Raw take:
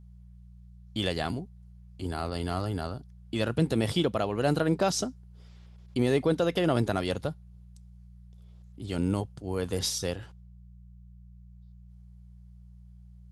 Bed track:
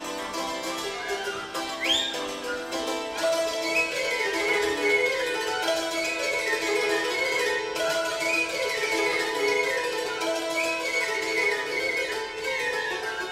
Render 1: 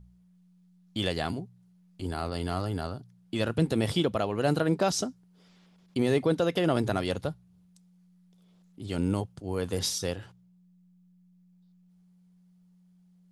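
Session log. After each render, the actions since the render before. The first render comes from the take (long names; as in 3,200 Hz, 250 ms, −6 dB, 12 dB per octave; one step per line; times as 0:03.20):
hum removal 60 Hz, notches 2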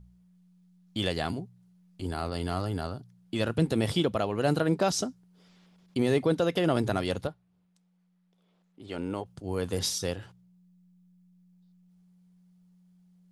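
0:07.27–0:09.26: bass and treble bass −12 dB, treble −11 dB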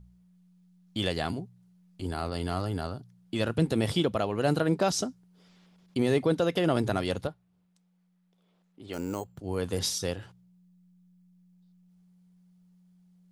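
0:08.93–0:09.39: bad sample-rate conversion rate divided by 6×, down filtered, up hold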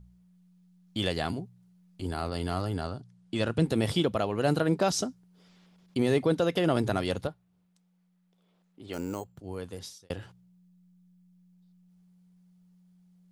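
0:02.75–0:03.63: Butterworth low-pass 10,000 Hz
0:08.96–0:10.10: fade out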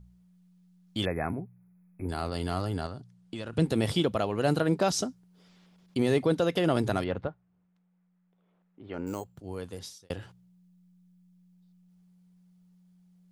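0:01.05–0:02.09: linear-phase brick-wall band-stop 2,600–10,000 Hz
0:02.86–0:03.53: downward compressor 5 to 1, threshold −33 dBFS
0:07.04–0:09.07: Chebyshev low-pass filter 1,800 Hz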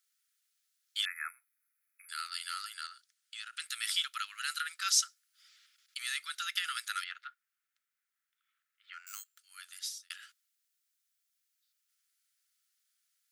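Chebyshev high-pass filter 1,300 Hz, order 6
high-shelf EQ 4,400 Hz +8.5 dB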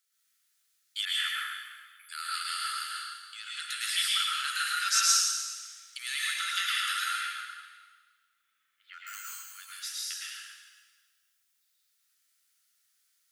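dense smooth reverb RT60 1.5 s, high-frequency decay 0.95×, pre-delay 95 ms, DRR −6 dB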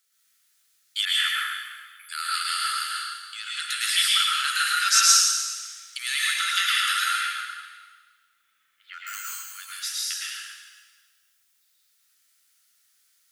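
level +7 dB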